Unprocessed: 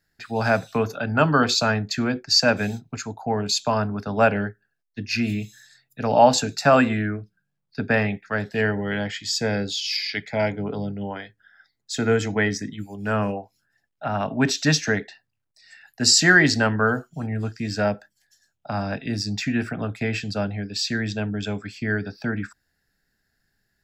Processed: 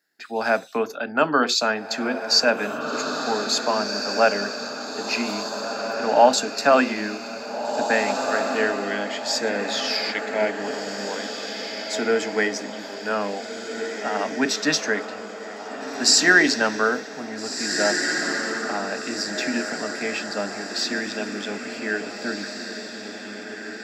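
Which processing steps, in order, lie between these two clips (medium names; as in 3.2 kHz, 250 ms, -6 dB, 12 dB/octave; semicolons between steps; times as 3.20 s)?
high-pass 250 Hz 24 dB/octave; echo that smears into a reverb 1781 ms, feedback 47%, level -6 dB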